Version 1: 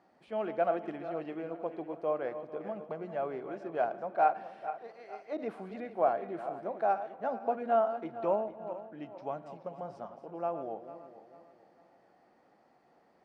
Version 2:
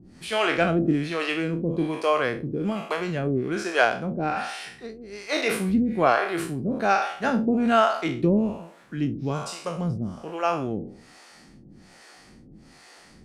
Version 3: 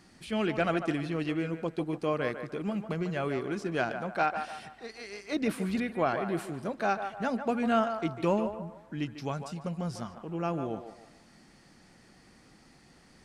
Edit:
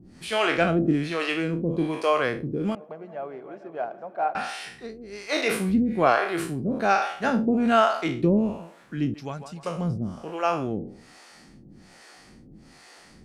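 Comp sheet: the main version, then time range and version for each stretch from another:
2
2.75–4.35 from 1
9.14–9.63 from 3

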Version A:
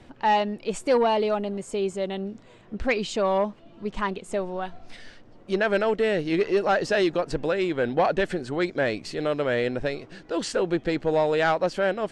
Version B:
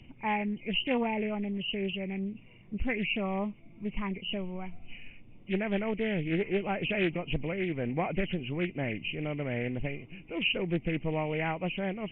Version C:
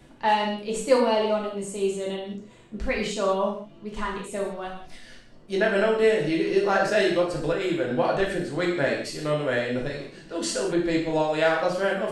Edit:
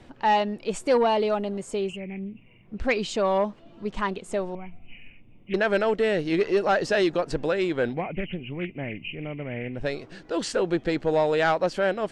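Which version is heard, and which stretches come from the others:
A
1.89–2.76 from B, crossfade 0.24 s
4.55–5.54 from B
7.94–9.81 from B, crossfade 0.16 s
not used: C

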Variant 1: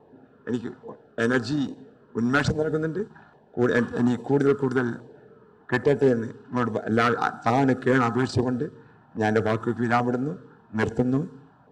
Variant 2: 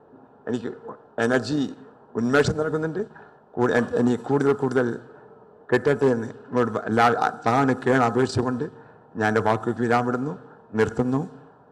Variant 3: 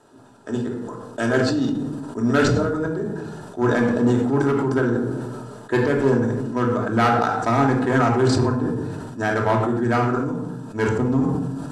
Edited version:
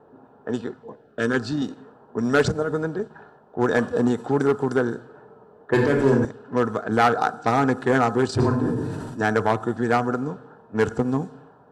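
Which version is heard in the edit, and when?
2
0.72–1.62 from 1
5.74–6.25 from 3
8.4–9.21 from 3

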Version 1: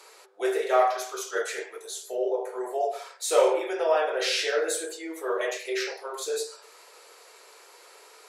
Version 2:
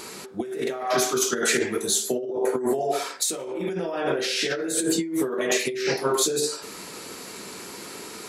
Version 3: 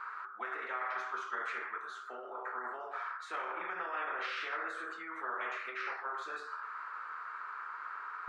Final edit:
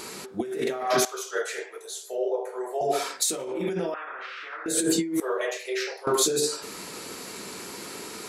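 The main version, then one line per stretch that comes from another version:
2
1.05–2.81 from 1
3.94–4.66 from 3
5.2–6.07 from 1

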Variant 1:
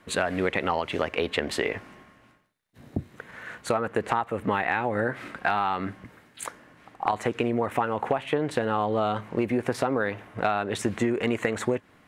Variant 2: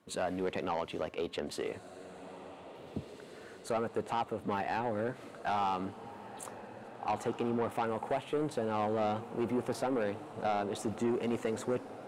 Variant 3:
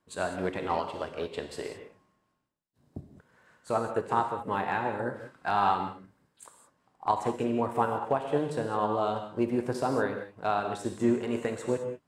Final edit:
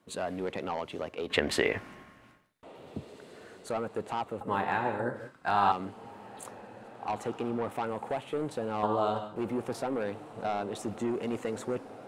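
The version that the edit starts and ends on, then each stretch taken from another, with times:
2
1.3–2.63 from 1
4.41–5.72 from 3
8.83–9.36 from 3

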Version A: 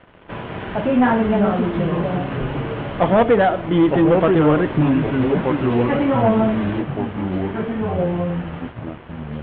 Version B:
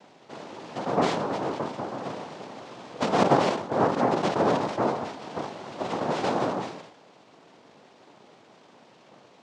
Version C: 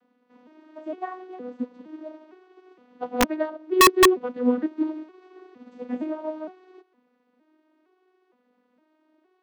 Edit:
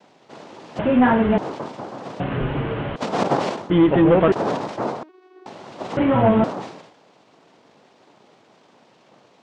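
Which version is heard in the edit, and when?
B
0.79–1.38 from A
2.2–2.96 from A
3.7–4.32 from A
5.03–5.46 from C
5.97–6.44 from A

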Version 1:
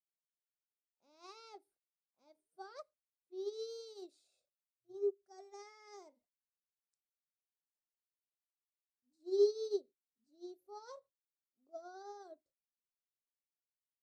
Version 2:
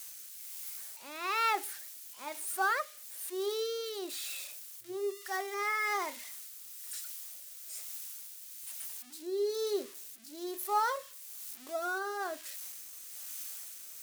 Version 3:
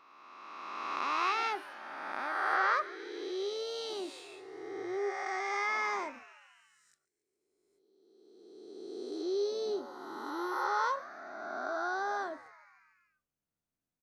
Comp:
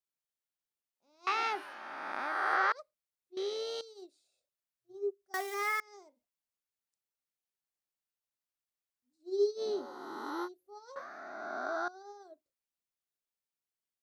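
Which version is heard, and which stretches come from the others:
1
1.27–2.72 from 3
3.37–3.81 from 3
5.34–5.8 from 2
9.59–10.46 from 3, crossfade 0.06 s
10.96–11.88 from 3

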